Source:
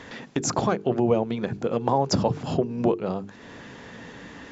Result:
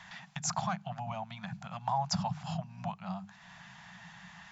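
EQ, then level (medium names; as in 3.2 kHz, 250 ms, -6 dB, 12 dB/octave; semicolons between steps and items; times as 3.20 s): elliptic band-stop 180–730 Hz, stop band 40 dB; resonant low shelf 130 Hz -6 dB, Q 1.5; -6.0 dB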